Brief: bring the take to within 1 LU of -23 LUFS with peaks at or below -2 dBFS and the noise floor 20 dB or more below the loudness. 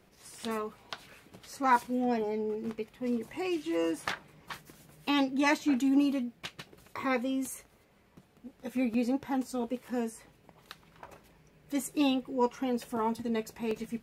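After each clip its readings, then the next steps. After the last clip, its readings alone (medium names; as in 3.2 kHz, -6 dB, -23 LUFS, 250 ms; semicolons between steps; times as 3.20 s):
dropouts 2; longest dropout 2.8 ms; loudness -31.5 LUFS; peak level -13.0 dBFS; loudness target -23.0 LUFS
-> interpolate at 8.94/13.71 s, 2.8 ms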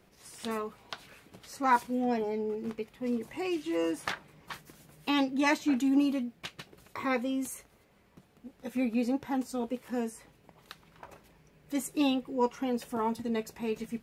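dropouts 0; loudness -31.5 LUFS; peak level -13.0 dBFS; loudness target -23.0 LUFS
-> trim +8.5 dB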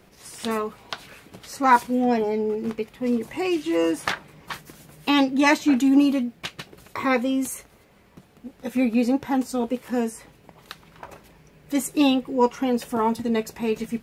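loudness -23.0 LUFS; peak level -4.5 dBFS; noise floor -55 dBFS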